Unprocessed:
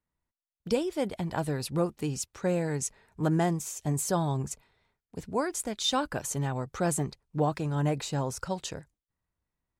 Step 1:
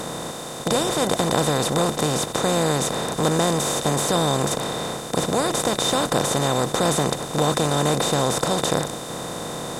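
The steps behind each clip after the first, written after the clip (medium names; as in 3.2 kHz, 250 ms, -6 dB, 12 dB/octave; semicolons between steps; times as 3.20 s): spectral levelling over time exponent 0.2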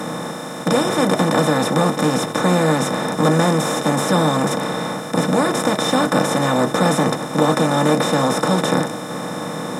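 reverberation RT60 0.15 s, pre-delay 3 ms, DRR 1.5 dB; trim -2 dB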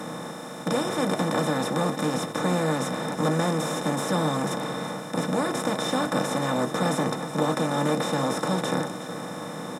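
delay 369 ms -13 dB; trim -8.5 dB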